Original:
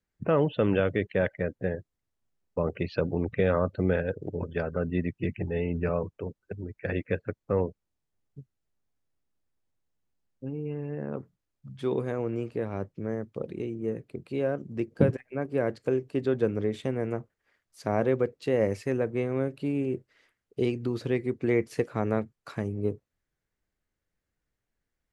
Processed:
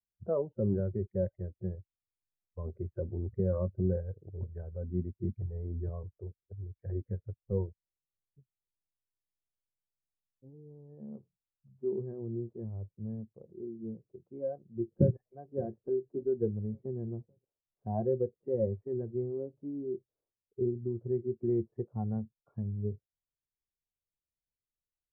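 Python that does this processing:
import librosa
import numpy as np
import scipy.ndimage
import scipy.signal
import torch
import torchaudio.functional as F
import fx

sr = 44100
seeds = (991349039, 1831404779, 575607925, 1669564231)

y = fx.echo_throw(x, sr, start_s=14.88, length_s=0.4, ms=570, feedback_pct=55, wet_db=-14.0)
y = scipy.signal.sosfilt(scipy.signal.bessel(6, 550.0, 'lowpass', norm='mag', fs=sr, output='sos'), y)
y = fx.noise_reduce_blind(y, sr, reduce_db=16)
y = fx.peak_eq(y, sr, hz=260.0, db=-13.5, octaves=0.24)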